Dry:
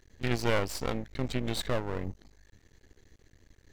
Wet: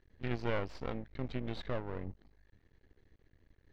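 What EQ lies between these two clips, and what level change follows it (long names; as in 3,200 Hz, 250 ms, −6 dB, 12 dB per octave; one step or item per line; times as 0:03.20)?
high-frequency loss of the air 250 metres
−6.0 dB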